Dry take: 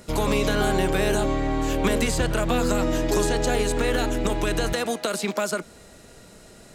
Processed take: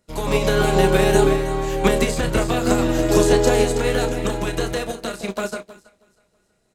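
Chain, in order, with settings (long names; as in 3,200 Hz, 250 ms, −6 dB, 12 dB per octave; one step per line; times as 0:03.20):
double-tracking delay 31 ms −8 dB
delay that swaps between a low-pass and a high-pass 161 ms, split 890 Hz, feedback 66%, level −4 dB
expander for the loud parts 2.5 to 1, over −35 dBFS
level +5.5 dB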